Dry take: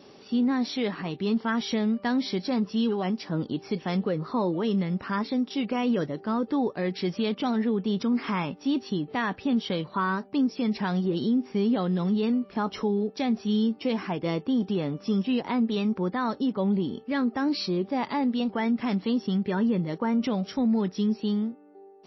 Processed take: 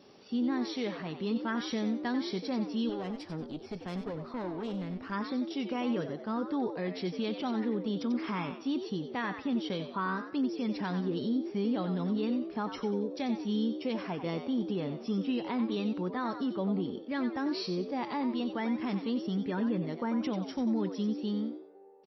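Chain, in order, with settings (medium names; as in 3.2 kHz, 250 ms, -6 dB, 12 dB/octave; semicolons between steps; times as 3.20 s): 2.89–5.12 s: valve stage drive 25 dB, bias 0.55; frequency-shifting echo 92 ms, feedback 32%, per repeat +81 Hz, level -9 dB; trim -6.5 dB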